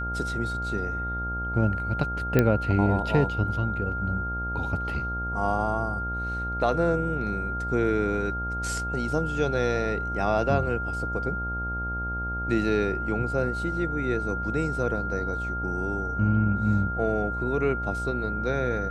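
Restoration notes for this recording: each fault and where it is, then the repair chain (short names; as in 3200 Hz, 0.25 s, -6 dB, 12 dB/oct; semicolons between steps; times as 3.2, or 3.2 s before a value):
buzz 60 Hz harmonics 16 -33 dBFS
tone 1400 Hz -30 dBFS
2.39 pop -8 dBFS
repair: de-click; de-hum 60 Hz, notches 16; notch 1400 Hz, Q 30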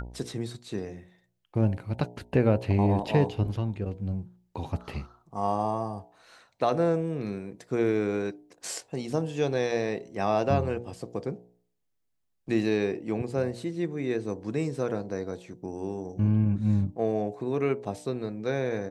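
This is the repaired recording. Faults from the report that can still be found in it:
none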